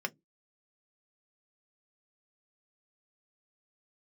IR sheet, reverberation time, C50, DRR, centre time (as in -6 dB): no single decay rate, 31.5 dB, 4.0 dB, 3 ms